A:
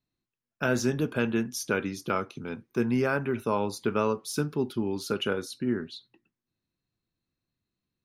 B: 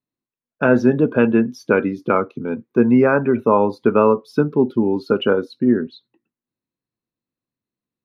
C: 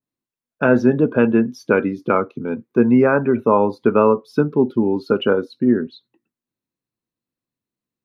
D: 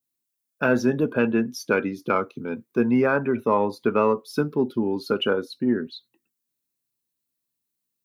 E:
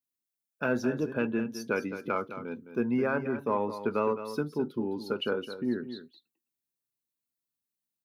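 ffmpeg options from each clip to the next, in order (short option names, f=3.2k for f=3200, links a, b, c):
-af "equalizer=f=125:t=o:w=1:g=5,equalizer=f=250:t=o:w=1:g=10,equalizer=f=500:t=o:w=1:g=10,equalizer=f=1k:t=o:w=1:g=9,equalizer=f=2k:t=o:w=1:g=6,equalizer=f=4k:t=o:w=1:g=5,equalizer=f=8k:t=o:w=1:g=-9,afftdn=nr=13:nf=-29"
-af "adynamicequalizer=threshold=0.0251:dfrequency=2100:dqfactor=0.7:tfrequency=2100:tqfactor=0.7:attack=5:release=100:ratio=0.375:range=2:mode=cutabove:tftype=highshelf"
-filter_complex "[0:a]crystalizer=i=5:c=0,asplit=2[a][b];[b]asoftclip=type=tanh:threshold=-8.5dB,volume=-11dB[c];[a][c]amix=inputs=2:normalize=0,volume=-8.5dB"
-af "aecho=1:1:212:0.282,volume=-8dB"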